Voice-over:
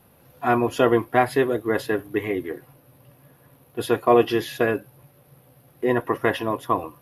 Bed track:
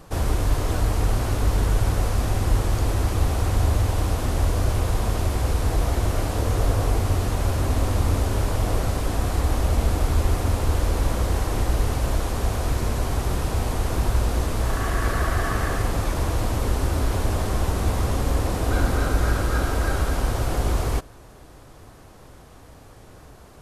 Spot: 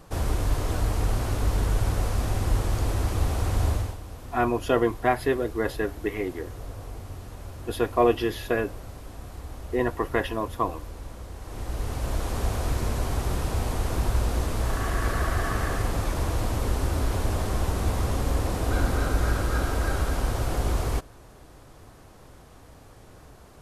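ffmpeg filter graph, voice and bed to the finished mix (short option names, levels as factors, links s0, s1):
-filter_complex "[0:a]adelay=3900,volume=0.631[s0];[1:a]volume=3.35,afade=t=out:st=3.69:d=0.29:silence=0.211349,afade=t=in:st=11.39:d=0.99:silence=0.199526[s1];[s0][s1]amix=inputs=2:normalize=0"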